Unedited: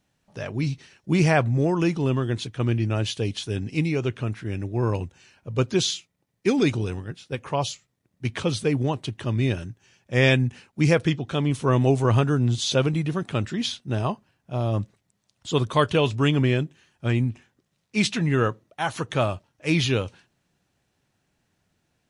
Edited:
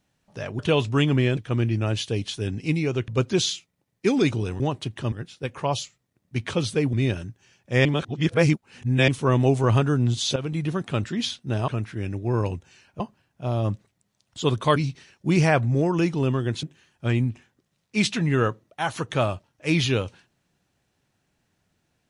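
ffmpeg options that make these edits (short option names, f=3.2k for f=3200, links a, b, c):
-filter_complex "[0:a]asplit=14[a][b][c][d][e][f][g][h][i][j][k][l][m][n];[a]atrim=end=0.592[o];[b]atrim=start=15.848:end=16.632[p];[c]atrim=start=2.458:end=4.172[q];[d]atrim=start=5.488:end=7.012[r];[e]atrim=start=8.818:end=9.342[s];[f]atrim=start=7.008:end=8.822[t];[g]atrim=start=9.338:end=10.262[u];[h]atrim=start=10.258:end=11.492,asetpts=PTS-STARTPTS,areverse[v];[i]atrim=start=11.488:end=12.77,asetpts=PTS-STARTPTS,afade=t=out:st=1.278:d=0.004:c=hsin:silence=0.223872[w];[j]atrim=start=12.77:end=14.092,asetpts=PTS-STARTPTS,afade=t=in:d=0.31:silence=0.223872[x];[k]atrim=start=4.168:end=5.492[y];[l]atrim=start=14.088:end=15.852[z];[m]atrim=start=0.588:end=2.462[aa];[n]atrim=start=16.628[ab];[o][p]acrossfade=d=0.004:c1=hsin:c2=hsin[ac];[ac][q]acrossfade=d=0.004:c1=hsin:c2=hsin[ad];[ad][r]acrossfade=d=0.004:c1=hsin:c2=hsin[ae];[ae][s]acrossfade=d=0.004:c1=hsin:c2=hsin[af];[af][t]acrossfade=d=0.004:c1=hsin:c2=hsin[ag];[ag][u]acrossfade=d=0.004:c1=hsin:c2=hsin[ah];[ah][v]acrossfade=d=0.004:c1=hsin:c2=hsin[ai];[w][x]concat=n=2:v=0:a=1[aj];[ai][aj]acrossfade=d=0.004:c1=hsin:c2=hsin[ak];[ak][y]acrossfade=d=0.004:c1=hsin:c2=hsin[al];[al][z]acrossfade=d=0.004:c1=hsin:c2=hsin[am];[am][aa]acrossfade=d=0.004:c1=hsin:c2=hsin[an];[an][ab]acrossfade=d=0.004:c1=hsin:c2=hsin"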